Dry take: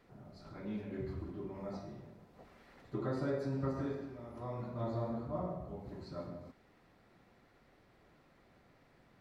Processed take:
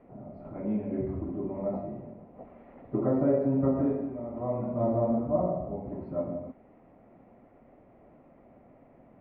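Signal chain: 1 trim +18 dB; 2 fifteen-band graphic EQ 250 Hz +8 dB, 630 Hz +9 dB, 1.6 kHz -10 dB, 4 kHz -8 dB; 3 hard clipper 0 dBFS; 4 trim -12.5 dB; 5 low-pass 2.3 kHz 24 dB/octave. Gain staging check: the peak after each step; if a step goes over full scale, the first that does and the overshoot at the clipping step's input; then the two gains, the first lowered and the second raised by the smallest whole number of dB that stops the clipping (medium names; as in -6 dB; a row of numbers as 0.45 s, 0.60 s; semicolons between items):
-7.0 dBFS, -1.5 dBFS, -1.5 dBFS, -14.0 dBFS, -14.0 dBFS; nothing clips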